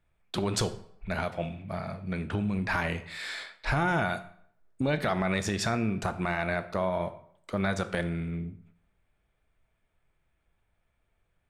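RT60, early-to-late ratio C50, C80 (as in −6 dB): 0.65 s, 14.0 dB, 17.5 dB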